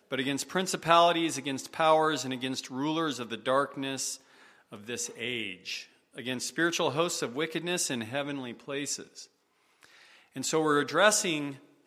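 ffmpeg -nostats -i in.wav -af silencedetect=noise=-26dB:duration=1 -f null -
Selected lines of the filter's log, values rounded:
silence_start: 8.95
silence_end: 10.37 | silence_duration: 1.43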